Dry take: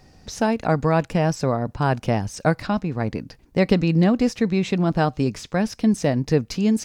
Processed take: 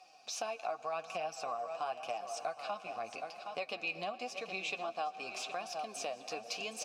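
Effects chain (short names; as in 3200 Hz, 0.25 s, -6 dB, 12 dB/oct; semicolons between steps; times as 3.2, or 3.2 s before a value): high shelf 3000 Hz +11 dB; echo 0.767 s -13 dB; reverb RT60 4.1 s, pre-delay 97 ms, DRR 15 dB; flange 0.88 Hz, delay 5.2 ms, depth 5.7 ms, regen +36%; vowel filter a; compressor 3:1, threshold -44 dBFS, peak gain reduction 13.5 dB; HPF 100 Hz; tilt +3.5 dB/oct; gain +7 dB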